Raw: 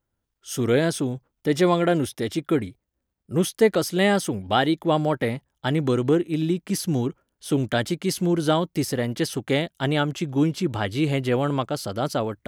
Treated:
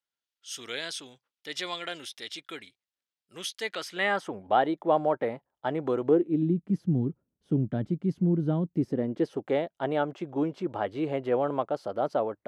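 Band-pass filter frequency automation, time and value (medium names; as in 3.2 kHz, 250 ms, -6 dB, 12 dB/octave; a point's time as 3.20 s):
band-pass filter, Q 1.2
3.60 s 3.7 kHz
4.41 s 700 Hz
6.00 s 700 Hz
6.58 s 170 Hz
8.62 s 170 Hz
9.53 s 640 Hz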